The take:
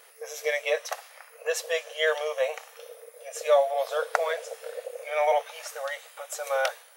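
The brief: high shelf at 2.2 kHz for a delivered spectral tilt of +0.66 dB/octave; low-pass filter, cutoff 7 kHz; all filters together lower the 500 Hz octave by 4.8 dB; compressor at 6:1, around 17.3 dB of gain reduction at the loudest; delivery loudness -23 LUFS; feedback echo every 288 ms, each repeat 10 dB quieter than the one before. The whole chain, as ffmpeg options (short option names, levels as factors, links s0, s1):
-af "lowpass=7000,equalizer=f=500:t=o:g=-6,highshelf=f=2200:g=4,acompressor=threshold=0.00891:ratio=6,aecho=1:1:288|576|864|1152:0.316|0.101|0.0324|0.0104,volume=10.6"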